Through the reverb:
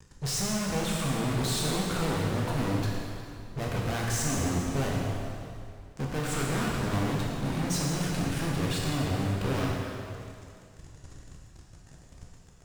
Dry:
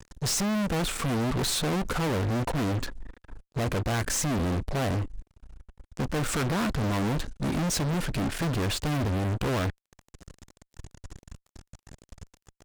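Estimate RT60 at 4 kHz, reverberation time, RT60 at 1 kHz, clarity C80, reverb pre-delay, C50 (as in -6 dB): 2.2 s, 2.4 s, 2.3 s, 0.5 dB, 5 ms, -0.5 dB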